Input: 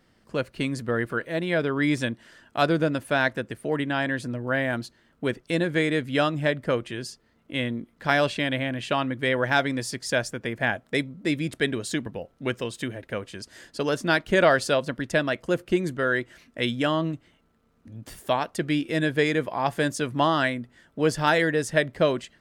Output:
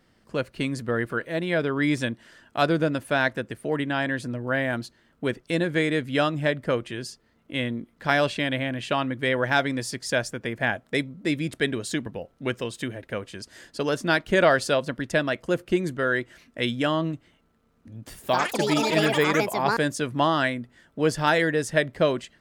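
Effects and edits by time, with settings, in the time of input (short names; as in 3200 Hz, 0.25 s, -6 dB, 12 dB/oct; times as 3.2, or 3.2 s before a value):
18.15–20.32 echoes that change speed 84 ms, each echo +6 st, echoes 3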